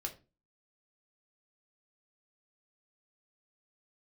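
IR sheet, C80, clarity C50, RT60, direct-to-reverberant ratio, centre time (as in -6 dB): 20.0 dB, 14.0 dB, 0.30 s, 2.0 dB, 10 ms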